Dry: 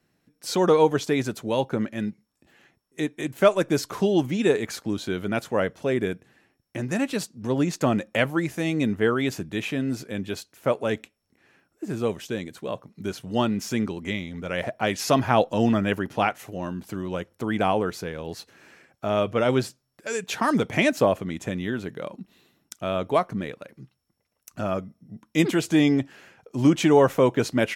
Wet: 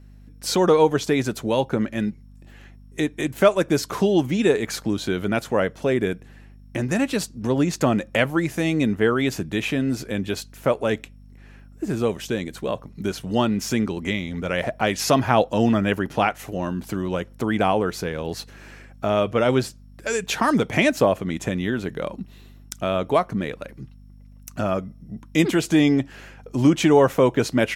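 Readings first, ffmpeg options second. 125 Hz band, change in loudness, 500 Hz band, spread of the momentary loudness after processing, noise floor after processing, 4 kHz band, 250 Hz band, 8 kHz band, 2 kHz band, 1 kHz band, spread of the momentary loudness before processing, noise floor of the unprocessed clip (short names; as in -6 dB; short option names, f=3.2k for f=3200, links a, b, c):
+3.0 dB, +2.5 dB, +2.5 dB, 12 LU, -46 dBFS, +3.5 dB, +2.5 dB, +4.0 dB, +3.0 dB, +2.5 dB, 14 LU, -75 dBFS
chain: -filter_complex "[0:a]aeval=exprs='val(0)+0.00282*(sin(2*PI*50*n/s)+sin(2*PI*2*50*n/s)/2+sin(2*PI*3*50*n/s)/3+sin(2*PI*4*50*n/s)/4+sin(2*PI*5*50*n/s)/5)':c=same,asplit=2[a][b];[b]acompressor=threshold=-29dB:ratio=6,volume=0.5dB[c];[a][c]amix=inputs=2:normalize=0"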